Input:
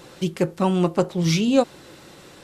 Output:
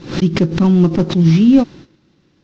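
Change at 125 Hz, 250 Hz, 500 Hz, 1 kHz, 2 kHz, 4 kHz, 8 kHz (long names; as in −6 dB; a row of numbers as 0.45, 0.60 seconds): +11.0 dB, +10.5 dB, +1.5 dB, −1.0 dB, +3.5 dB, +2.0 dB, can't be measured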